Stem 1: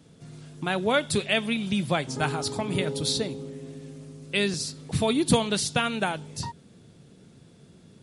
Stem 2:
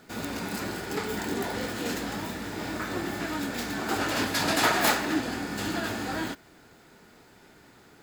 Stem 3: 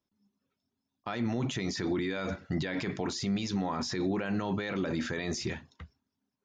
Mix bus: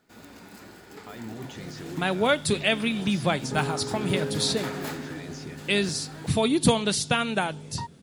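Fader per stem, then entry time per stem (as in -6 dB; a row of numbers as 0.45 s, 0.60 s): +1.0 dB, -13.5 dB, -8.0 dB; 1.35 s, 0.00 s, 0.00 s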